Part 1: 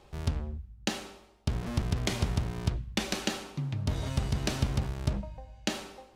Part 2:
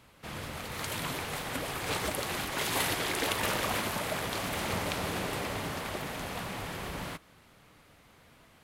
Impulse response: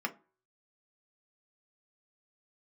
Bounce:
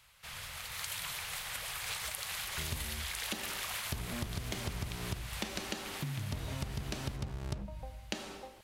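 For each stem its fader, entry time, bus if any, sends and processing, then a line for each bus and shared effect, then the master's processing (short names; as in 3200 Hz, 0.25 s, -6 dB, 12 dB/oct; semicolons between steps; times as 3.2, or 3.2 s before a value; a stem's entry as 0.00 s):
+1.0 dB, 2.45 s, no send, dry
+2.0 dB, 0.00 s, no send, passive tone stack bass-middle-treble 10-0-10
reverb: off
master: compressor 6:1, threshold -35 dBFS, peak gain reduction 14 dB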